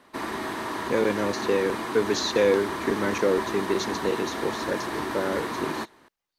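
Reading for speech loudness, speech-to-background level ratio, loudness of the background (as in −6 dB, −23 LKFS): −27.0 LKFS, 4.0 dB, −31.0 LKFS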